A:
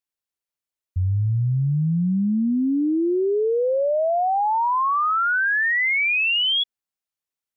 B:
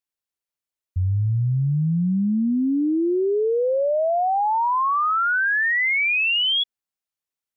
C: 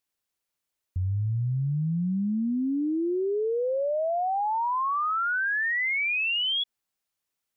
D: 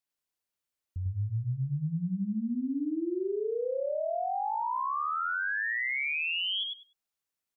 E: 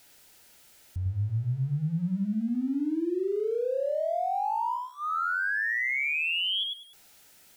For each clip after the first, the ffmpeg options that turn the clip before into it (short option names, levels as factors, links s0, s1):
-af anull
-af "alimiter=level_in=1.78:limit=0.0631:level=0:latency=1,volume=0.562,volume=1.88"
-af "aecho=1:1:98|196|294:0.708|0.113|0.0181,volume=0.473"
-af "aeval=exprs='val(0)+0.5*0.00251*sgn(val(0))':c=same,asuperstop=centerf=1100:order=8:qfactor=5.5,volume=1.33"